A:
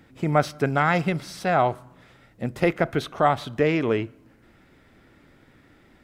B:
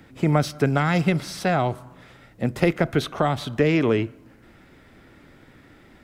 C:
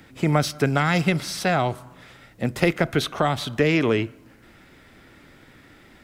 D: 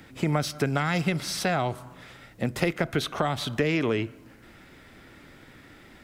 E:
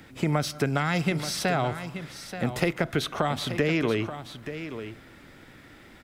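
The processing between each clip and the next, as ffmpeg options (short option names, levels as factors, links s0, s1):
-filter_complex "[0:a]acrossover=split=340|3000[s0][s1][s2];[s1]acompressor=threshold=0.0501:ratio=6[s3];[s0][s3][s2]amix=inputs=3:normalize=0,volume=1.68"
-af "tiltshelf=f=1500:g=-3,volume=1.26"
-af "acompressor=threshold=0.0562:ratio=2"
-af "aecho=1:1:880:0.282"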